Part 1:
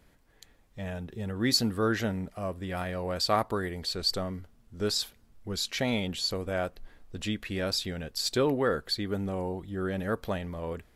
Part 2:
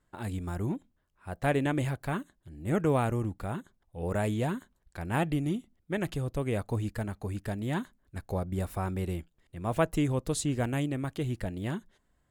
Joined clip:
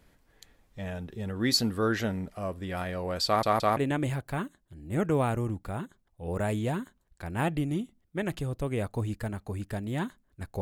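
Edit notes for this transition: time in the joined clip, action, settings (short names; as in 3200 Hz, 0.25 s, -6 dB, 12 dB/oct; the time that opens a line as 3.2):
part 1
3.26 stutter in place 0.17 s, 3 plays
3.77 switch to part 2 from 1.52 s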